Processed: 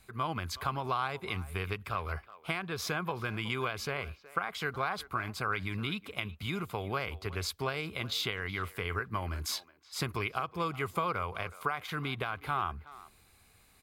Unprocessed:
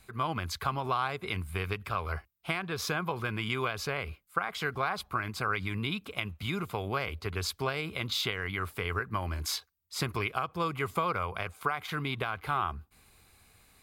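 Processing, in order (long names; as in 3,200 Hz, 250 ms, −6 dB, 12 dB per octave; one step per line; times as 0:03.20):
far-end echo of a speakerphone 370 ms, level −17 dB
level −2 dB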